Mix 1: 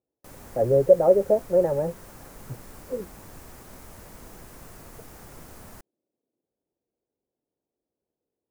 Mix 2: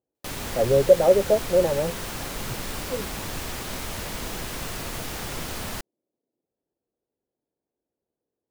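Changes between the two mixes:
background +11.5 dB; master: add bell 3400 Hz +11 dB 1.5 oct

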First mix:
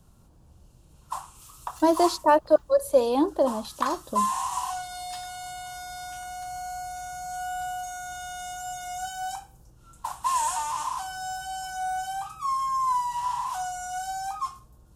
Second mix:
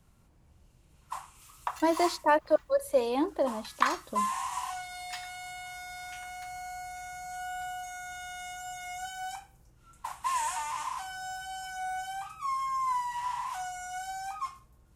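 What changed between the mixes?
speech -6.0 dB; first sound -6.5 dB; master: add bell 2100 Hz +13 dB 0.67 oct

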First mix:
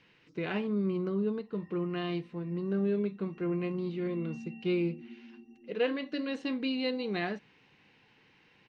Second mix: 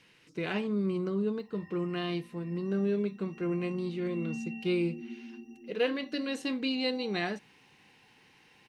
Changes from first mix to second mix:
background +5.5 dB; master: remove air absorption 160 m

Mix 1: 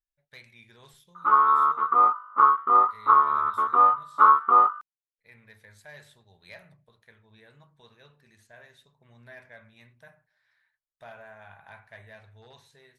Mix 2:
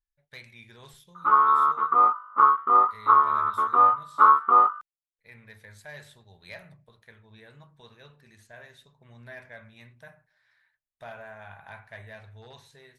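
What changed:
speech +3.5 dB; master: add low shelf 130 Hz +3.5 dB

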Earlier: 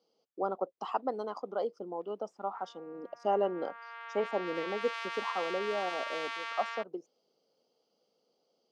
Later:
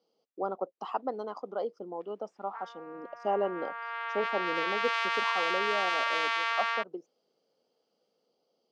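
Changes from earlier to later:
background +9.5 dB; master: add air absorption 56 m

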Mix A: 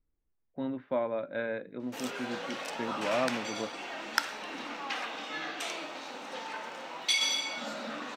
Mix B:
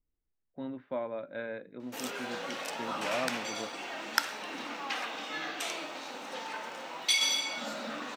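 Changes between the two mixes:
speech -4.5 dB; master: add high shelf 10000 Hz +8.5 dB

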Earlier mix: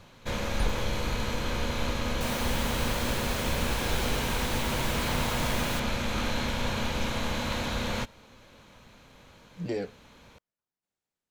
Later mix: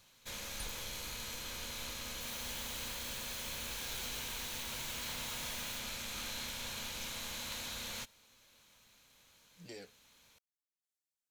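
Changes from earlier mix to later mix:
second sound -11.5 dB; master: add pre-emphasis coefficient 0.9

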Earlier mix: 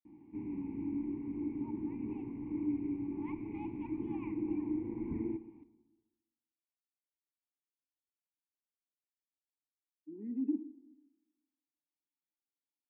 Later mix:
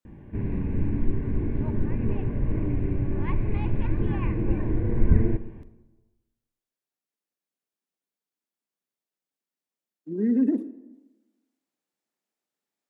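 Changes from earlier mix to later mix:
speech +6.5 dB; master: remove vowel filter u

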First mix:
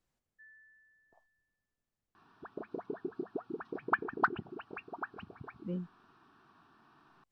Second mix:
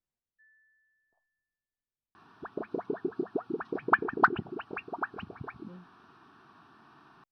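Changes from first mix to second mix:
speech -12.0 dB; first sound -6.0 dB; second sound +6.5 dB

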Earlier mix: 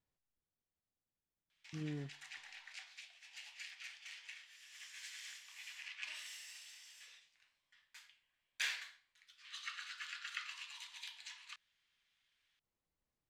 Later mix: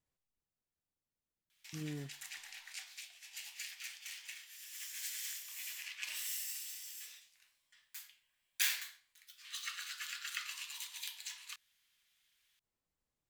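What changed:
background: add high shelf 5500 Hz +8.5 dB; master: remove air absorption 66 m

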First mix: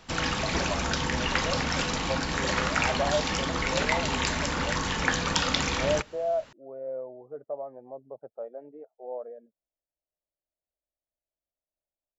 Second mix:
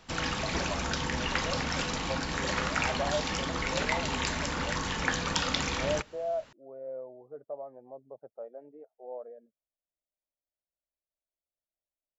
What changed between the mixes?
speech -4.5 dB; background -3.5 dB

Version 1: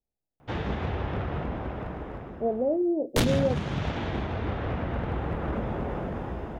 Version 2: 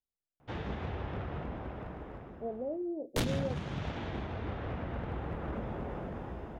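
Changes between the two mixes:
speech -11.0 dB; background -7.5 dB

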